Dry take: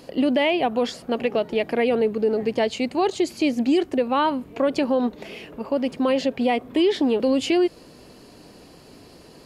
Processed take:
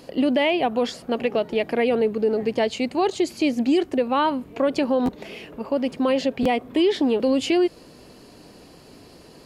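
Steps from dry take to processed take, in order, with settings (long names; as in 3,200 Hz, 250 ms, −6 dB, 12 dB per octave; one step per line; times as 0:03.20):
buffer that repeats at 0:05.05/0:06.42, samples 512, times 2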